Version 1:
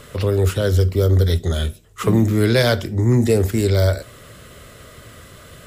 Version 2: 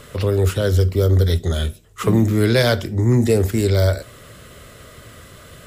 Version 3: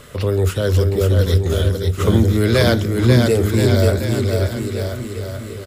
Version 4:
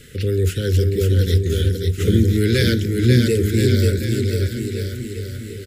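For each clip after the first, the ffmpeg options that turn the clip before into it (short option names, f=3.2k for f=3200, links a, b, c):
-af anull
-af "aecho=1:1:540|1026|1463|1857|2211:0.631|0.398|0.251|0.158|0.1"
-af "asuperstop=centerf=850:order=8:qfactor=0.79,volume=-1dB"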